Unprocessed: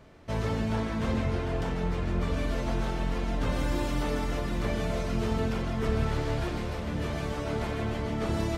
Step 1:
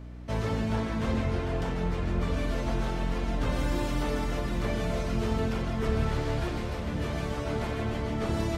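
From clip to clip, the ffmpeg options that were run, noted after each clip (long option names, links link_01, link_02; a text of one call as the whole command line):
ffmpeg -i in.wav -af "aeval=exprs='val(0)+0.00891*(sin(2*PI*60*n/s)+sin(2*PI*2*60*n/s)/2+sin(2*PI*3*60*n/s)/3+sin(2*PI*4*60*n/s)/4+sin(2*PI*5*60*n/s)/5)':channel_layout=same" out.wav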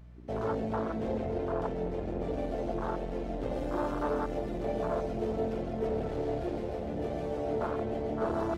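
ffmpeg -i in.wav -af "aeval=exprs='0.178*sin(PI/2*2.24*val(0)/0.178)':channel_layout=same,afwtdn=0.0891,bass=frequency=250:gain=-14,treble=frequency=4000:gain=-2,volume=-5dB" out.wav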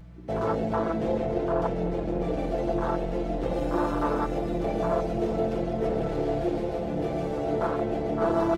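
ffmpeg -i in.wav -af "aecho=1:1:6:0.57,volume=5dB" out.wav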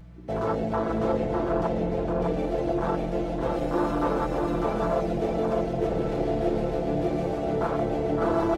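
ffmpeg -i in.wav -af "aecho=1:1:603:0.631" out.wav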